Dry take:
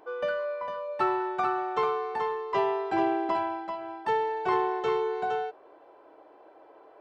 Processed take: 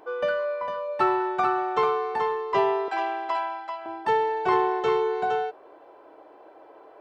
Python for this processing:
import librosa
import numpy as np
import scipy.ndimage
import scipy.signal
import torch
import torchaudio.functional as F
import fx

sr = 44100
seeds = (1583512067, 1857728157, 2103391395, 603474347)

y = fx.highpass(x, sr, hz=840.0, slope=12, at=(2.88, 3.86))
y = F.gain(torch.from_numpy(y), 4.0).numpy()